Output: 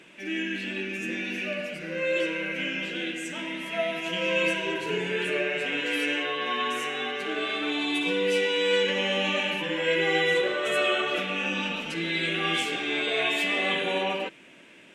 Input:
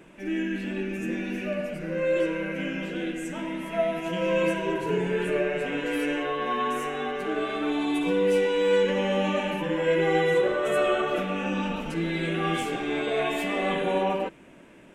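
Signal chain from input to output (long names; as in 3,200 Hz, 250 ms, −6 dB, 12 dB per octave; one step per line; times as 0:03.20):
meter weighting curve D
level −3 dB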